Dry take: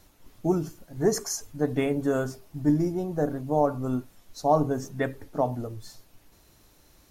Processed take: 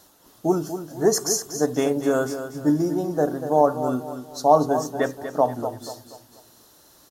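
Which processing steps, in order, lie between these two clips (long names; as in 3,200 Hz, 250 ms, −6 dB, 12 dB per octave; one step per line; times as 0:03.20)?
high-pass filter 440 Hz 6 dB per octave
parametric band 2,300 Hz −12 dB 0.55 octaves
on a send: repeating echo 240 ms, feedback 38%, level −10 dB
on the sum: level +8 dB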